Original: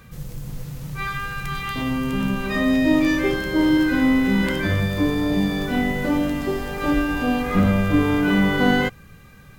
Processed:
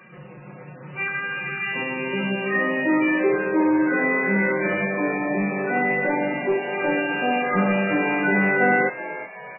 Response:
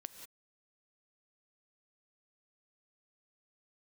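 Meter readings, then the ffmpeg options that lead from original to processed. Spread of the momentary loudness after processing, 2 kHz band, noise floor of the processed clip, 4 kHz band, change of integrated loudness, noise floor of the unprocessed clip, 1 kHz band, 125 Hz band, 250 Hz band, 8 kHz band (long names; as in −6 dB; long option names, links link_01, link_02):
8 LU, +3.5 dB, −41 dBFS, can't be measured, −1.0 dB, −46 dBFS, +2.5 dB, −7.5 dB, −4.5 dB, below −40 dB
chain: -filter_complex "[0:a]highpass=310,aecho=1:1:5.5:0.8,asplit=2[link_01][link_02];[link_02]aeval=exprs='0.0891*(abs(mod(val(0)/0.0891+3,4)-2)-1)':channel_layout=same,volume=-10.5dB[link_03];[link_01][link_03]amix=inputs=2:normalize=0,asplit=5[link_04][link_05][link_06][link_07][link_08];[link_05]adelay=373,afreqshift=120,volume=-14.5dB[link_09];[link_06]adelay=746,afreqshift=240,volume=-21.4dB[link_10];[link_07]adelay=1119,afreqshift=360,volume=-28.4dB[link_11];[link_08]adelay=1492,afreqshift=480,volume=-35.3dB[link_12];[link_04][link_09][link_10][link_11][link_12]amix=inputs=5:normalize=0" -ar 11025 -c:a libmp3lame -b:a 8k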